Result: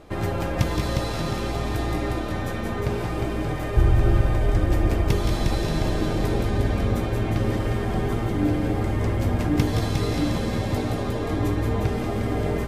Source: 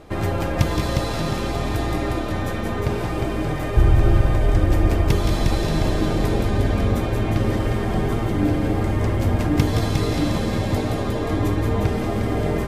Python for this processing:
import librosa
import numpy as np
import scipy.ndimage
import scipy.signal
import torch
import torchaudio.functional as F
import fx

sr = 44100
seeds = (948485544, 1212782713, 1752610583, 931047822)

y = fx.doubler(x, sr, ms=17.0, db=-13.5)
y = y * 10.0 ** (-3.0 / 20.0)